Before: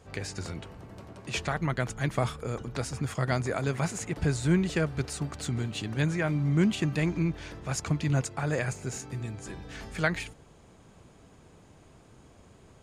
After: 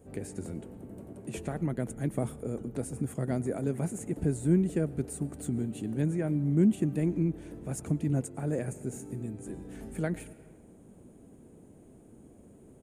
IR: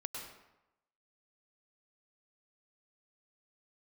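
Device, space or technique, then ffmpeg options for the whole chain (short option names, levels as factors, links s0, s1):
compressed reverb return: -filter_complex "[0:a]firequalizer=gain_entry='entry(110,0);entry(230,10);entry(1100,-10);entry(1600,-8);entry(4900,-15);entry(9000,7)':delay=0.05:min_phase=1,asplit=2[s0][s1];[1:a]atrim=start_sample=2205[s2];[s1][s2]afir=irnorm=-1:irlink=0,acompressor=threshold=0.0141:ratio=6,volume=0.596[s3];[s0][s3]amix=inputs=2:normalize=0,volume=0.473"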